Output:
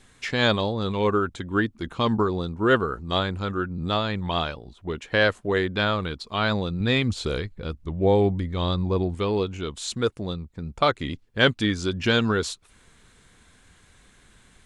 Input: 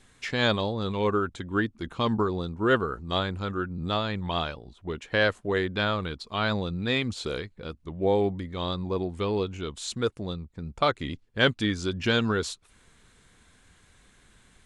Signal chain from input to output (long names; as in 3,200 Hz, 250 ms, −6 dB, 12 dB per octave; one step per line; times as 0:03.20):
0:06.80–0:09.15: low-shelf EQ 110 Hz +11 dB
level +3 dB